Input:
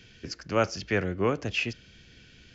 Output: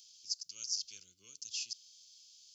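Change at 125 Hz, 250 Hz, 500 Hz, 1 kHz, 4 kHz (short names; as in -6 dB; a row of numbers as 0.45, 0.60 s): under -40 dB, under -40 dB, under -40 dB, under -40 dB, -2.0 dB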